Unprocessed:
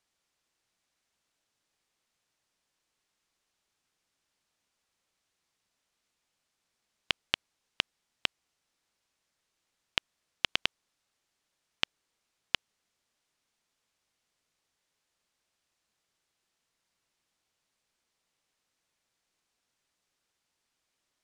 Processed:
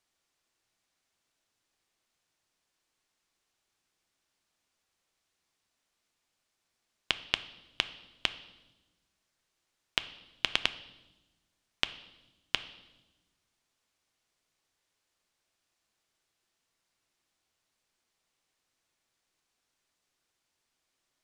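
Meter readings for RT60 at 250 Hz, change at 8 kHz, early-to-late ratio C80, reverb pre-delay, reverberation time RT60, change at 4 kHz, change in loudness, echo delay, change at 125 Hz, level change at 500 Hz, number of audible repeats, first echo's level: 1.6 s, +0.5 dB, 17.5 dB, 3 ms, 1.1 s, +0.5 dB, +0.5 dB, no echo, 0.0 dB, +0.5 dB, no echo, no echo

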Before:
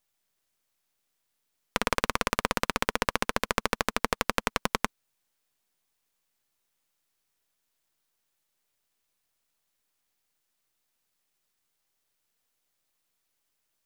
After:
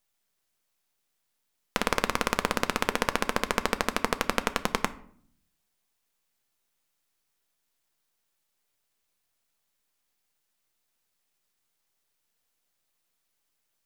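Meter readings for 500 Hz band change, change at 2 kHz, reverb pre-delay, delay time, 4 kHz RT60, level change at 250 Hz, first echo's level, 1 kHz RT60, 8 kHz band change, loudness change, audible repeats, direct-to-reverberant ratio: +1.5 dB, +0.5 dB, 4 ms, no echo, 0.40 s, +2.0 dB, no echo, 0.55 s, 0.0 dB, +0.5 dB, no echo, 11.0 dB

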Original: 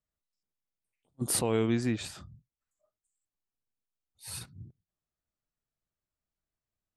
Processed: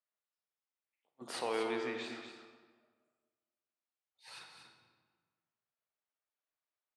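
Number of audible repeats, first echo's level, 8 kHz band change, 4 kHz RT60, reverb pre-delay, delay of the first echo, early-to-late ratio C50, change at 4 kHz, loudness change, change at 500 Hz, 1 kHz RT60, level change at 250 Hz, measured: 1, -8.0 dB, -18.5 dB, 1.0 s, 33 ms, 238 ms, 3.5 dB, -5.0 dB, -7.5 dB, -5.0 dB, 1.5 s, -12.5 dB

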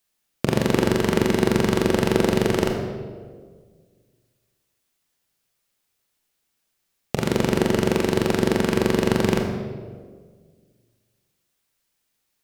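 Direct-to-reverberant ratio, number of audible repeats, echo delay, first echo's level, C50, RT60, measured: 2.5 dB, no echo, no echo, no echo, 4.5 dB, 1.7 s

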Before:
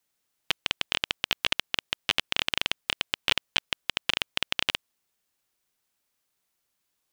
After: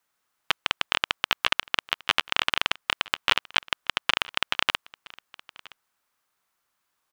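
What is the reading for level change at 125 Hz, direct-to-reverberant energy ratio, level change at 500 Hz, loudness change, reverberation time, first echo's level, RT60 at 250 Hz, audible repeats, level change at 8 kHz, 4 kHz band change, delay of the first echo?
-1.0 dB, no reverb, +2.5 dB, +2.5 dB, no reverb, -22.5 dB, no reverb, 1, -0.5 dB, +1.5 dB, 968 ms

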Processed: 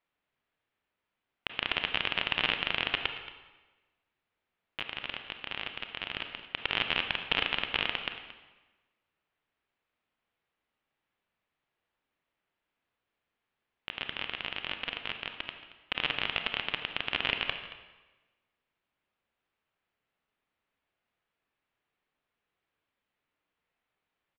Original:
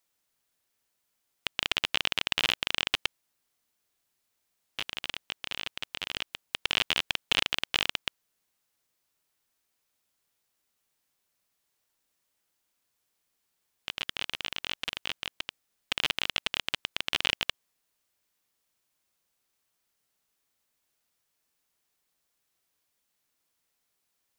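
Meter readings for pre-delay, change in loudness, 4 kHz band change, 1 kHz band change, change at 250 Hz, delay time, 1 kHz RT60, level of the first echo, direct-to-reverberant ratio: 28 ms, -2.0 dB, -3.0 dB, +1.0 dB, +1.0 dB, 226 ms, 1.2 s, -16.0 dB, 6.0 dB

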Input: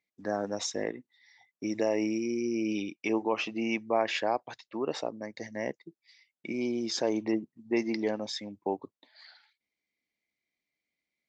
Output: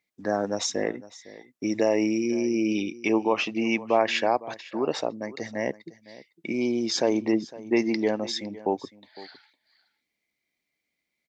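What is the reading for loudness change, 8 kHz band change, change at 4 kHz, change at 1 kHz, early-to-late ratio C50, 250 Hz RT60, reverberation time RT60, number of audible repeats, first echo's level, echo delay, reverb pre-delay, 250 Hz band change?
+5.5 dB, no reading, +5.5 dB, +5.5 dB, no reverb, no reverb, no reverb, 1, -18.5 dB, 507 ms, no reverb, +5.5 dB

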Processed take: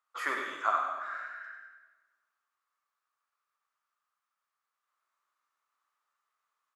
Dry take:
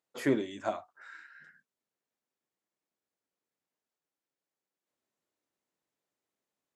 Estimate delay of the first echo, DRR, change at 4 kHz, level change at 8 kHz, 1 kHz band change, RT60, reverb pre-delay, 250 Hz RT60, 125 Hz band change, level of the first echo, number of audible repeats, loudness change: 98 ms, 1.5 dB, +1.5 dB, no reading, +10.5 dB, 1.3 s, 31 ms, 1.6 s, under -25 dB, -8.0 dB, 1, 0.0 dB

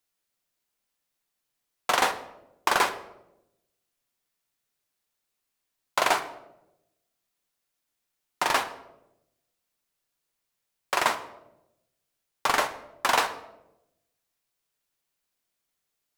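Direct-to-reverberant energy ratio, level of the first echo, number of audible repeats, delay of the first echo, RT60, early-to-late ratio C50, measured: 8.5 dB, no echo, no echo, no echo, 0.90 s, 12.5 dB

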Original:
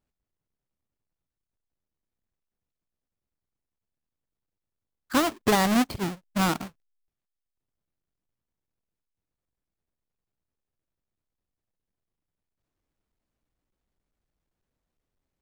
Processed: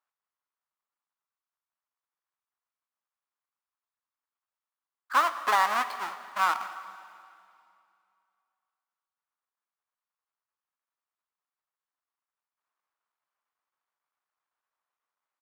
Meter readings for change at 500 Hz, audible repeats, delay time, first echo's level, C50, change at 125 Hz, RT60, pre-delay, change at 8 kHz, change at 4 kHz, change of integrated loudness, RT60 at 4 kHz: -10.0 dB, 1, 209 ms, -22.5 dB, 12.0 dB, under -30 dB, 2.5 s, 5 ms, -8.5 dB, -5.0 dB, -1.5 dB, 2.4 s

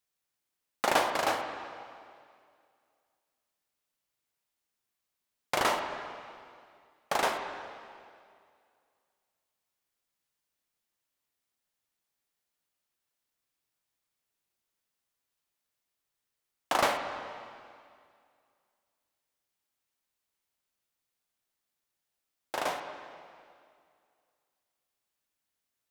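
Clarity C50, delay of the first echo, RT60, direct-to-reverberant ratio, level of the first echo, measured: 6.5 dB, no echo, 2.2 s, 4.5 dB, no echo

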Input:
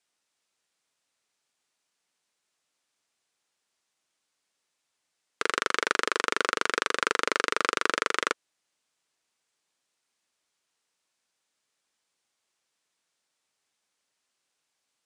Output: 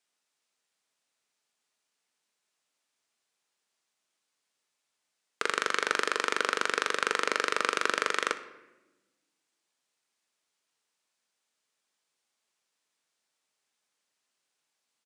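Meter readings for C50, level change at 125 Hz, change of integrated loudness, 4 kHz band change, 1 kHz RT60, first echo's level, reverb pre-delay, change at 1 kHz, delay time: 12.5 dB, no reading, -1.5 dB, -2.0 dB, 0.95 s, -18.0 dB, 4 ms, -2.0 dB, 61 ms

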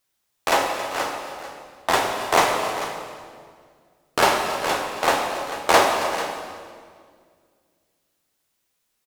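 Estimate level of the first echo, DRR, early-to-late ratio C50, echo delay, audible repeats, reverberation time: -15.5 dB, 0.5 dB, 3.0 dB, 273 ms, 3, 2.0 s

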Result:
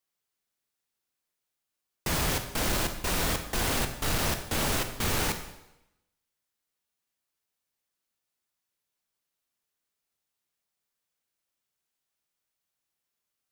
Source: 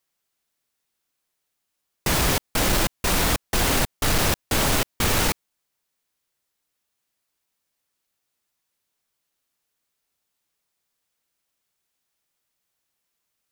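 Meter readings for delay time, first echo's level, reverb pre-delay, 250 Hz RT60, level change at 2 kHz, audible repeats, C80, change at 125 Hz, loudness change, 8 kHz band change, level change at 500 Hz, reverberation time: no echo, no echo, 8 ms, 0.85 s, -6.5 dB, no echo, 11.0 dB, -6.0 dB, -6.5 dB, -6.5 dB, -6.5 dB, 0.90 s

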